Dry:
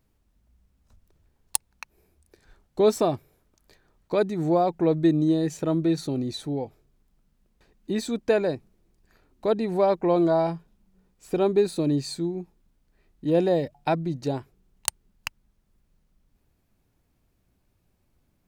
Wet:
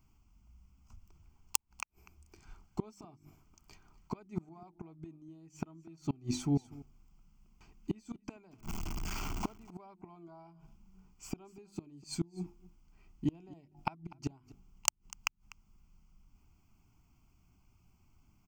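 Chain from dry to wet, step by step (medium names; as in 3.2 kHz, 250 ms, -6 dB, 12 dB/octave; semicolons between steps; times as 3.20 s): 8.51–9.49 s: jump at every zero crossing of -33.5 dBFS; hum notches 50/100/150/200/250/300/350 Hz; inverted gate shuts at -21 dBFS, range -30 dB; static phaser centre 2.6 kHz, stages 8; delay 247 ms -20.5 dB; trim +4 dB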